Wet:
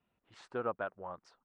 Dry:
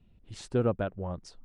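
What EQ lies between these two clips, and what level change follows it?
resonant band-pass 1,200 Hz, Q 1.5
+2.0 dB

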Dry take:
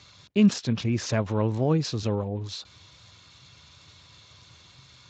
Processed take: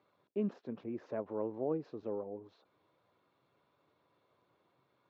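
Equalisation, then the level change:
four-pole ladder band-pass 500 Hz, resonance 20%
+2.0 dB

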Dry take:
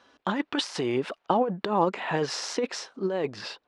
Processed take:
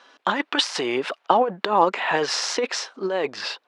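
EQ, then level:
meter weighting curve A
+7.5 dB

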